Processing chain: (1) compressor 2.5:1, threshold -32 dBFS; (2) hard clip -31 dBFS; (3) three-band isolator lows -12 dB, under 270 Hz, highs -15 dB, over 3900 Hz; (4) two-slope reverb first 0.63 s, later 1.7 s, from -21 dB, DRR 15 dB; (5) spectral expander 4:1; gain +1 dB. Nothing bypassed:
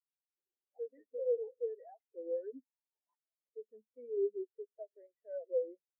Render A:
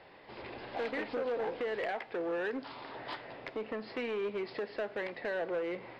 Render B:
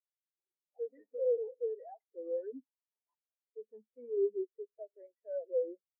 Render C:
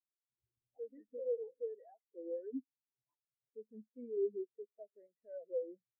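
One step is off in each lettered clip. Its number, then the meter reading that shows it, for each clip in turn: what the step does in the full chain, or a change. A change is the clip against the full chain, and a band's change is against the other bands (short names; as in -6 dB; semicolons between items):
5, momentary loudness spread change -8 LU; 1, momentary loudness spread change +1 LU; 3, loudness change -3.5 LU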